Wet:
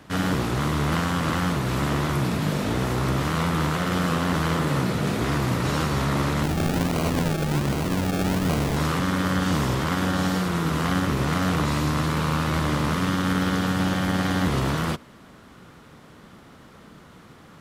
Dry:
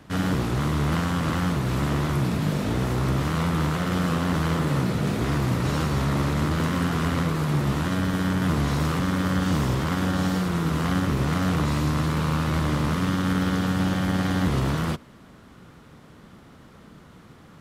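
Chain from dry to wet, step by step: bass shelf 270 Hz -5 dB; 6.43–8.77 s: decimation with a swept rate 35×, swing 60% 1.3 Hz; trim +3 dB

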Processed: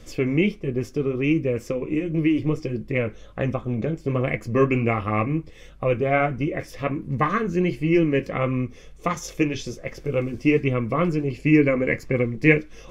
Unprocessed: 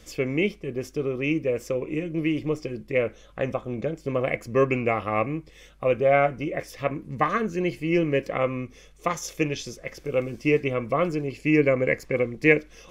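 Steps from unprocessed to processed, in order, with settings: dynamic bell 590 Hz, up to -7 dB, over -35 dBFS, Q 1.4; flange 1.4 Hz, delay 7.4 ms, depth 4.8 ms, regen -49%; tilt EQ -1.5 dB/octave; trim +7 dB

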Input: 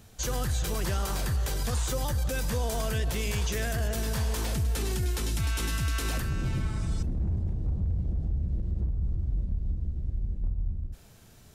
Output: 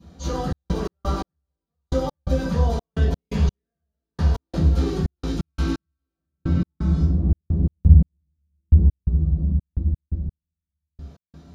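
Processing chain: 7.56–8.79 s: bass shelf 350 Hz +7 dB; reverberation RT60 0.50 s, pre-delay 3 ms, DRR -18.5 dB; trance gate "xxx.x.x....x." 86 bpm -60 dB; trim -17 dB

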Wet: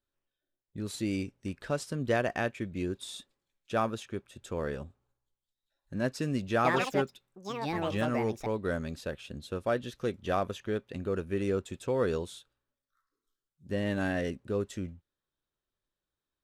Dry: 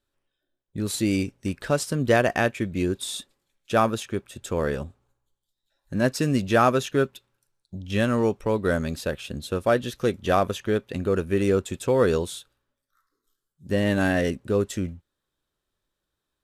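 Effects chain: 6.53–9.10 s: ever faster or slower copies 116 ms, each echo +6 st, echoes 2; treble shelf 10 kHz -10 dB; trim -8.5 dB

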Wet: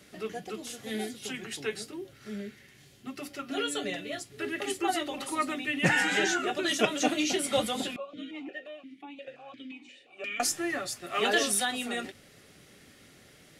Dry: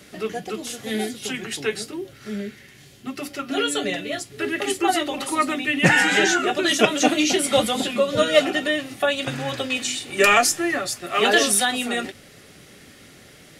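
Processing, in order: 7.96–10.40 s: stepped vowel filter 5.7 Hz; trim -8.5 dB

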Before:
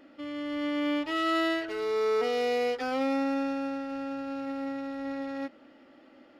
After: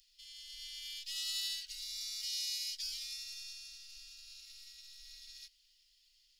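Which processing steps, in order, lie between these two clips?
inverse Chebyshev band-stop 160–940 Hz, stop band 80 dB; trim +11 dB

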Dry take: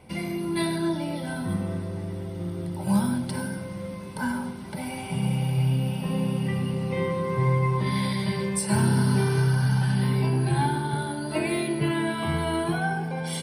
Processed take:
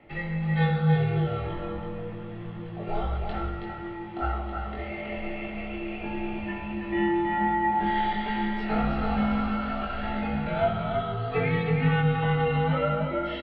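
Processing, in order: doubling 21 ms -3 dB; delay 324 ms -5 dB; mistuned SSB -180 Hz 270–3300 Hz

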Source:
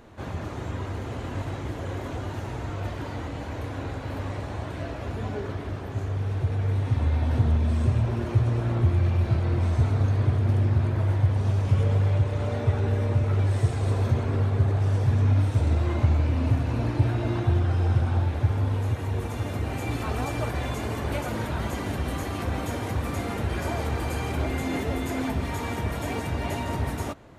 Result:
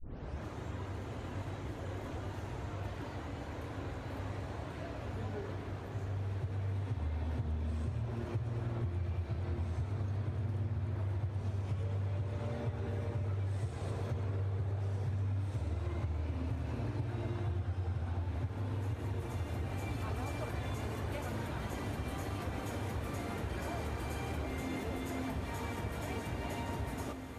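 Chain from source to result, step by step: tape start-up on the opening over 0.42 s; echo that smears into a reverb 1983 ms, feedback 49%, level -9 dB; compression 5:1, threshold -24 dBFS, peak gain reduction 9 dB; trim -9 dB

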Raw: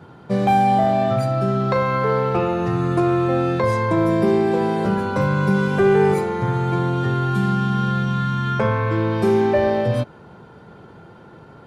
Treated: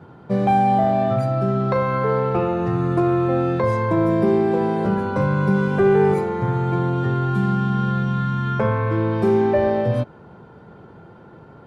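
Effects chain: treble shelf 2.5 kHz -9.5 dB

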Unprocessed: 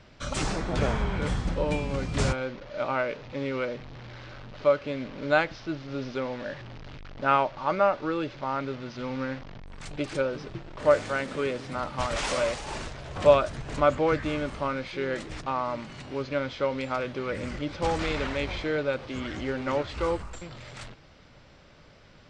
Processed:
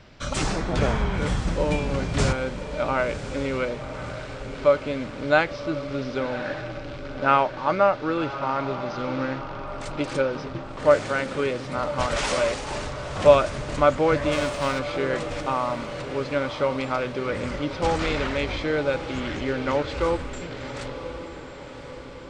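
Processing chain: 14.31–14.78 s: formants flattened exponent 0.6; echo that smears into a reverb 1080 ms, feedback 56%, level -11 dB; trim +3.5 dB

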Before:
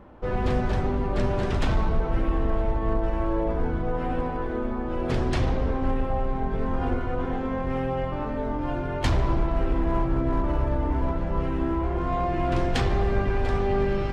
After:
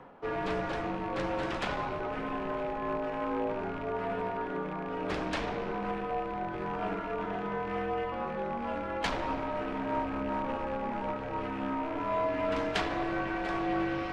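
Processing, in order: rattle on loud lows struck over -28 dBFS, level -36 dBFS; high-pass 900 Hz 6 dB/octave; treble shelf 3.8 kHz -9 dB; reverse; upward compressor, threshold -38 dBFS; reverse; frequency shift -61 Hz; loudspeaker Doppler distortion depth 0.14 ms; trim +2 dB

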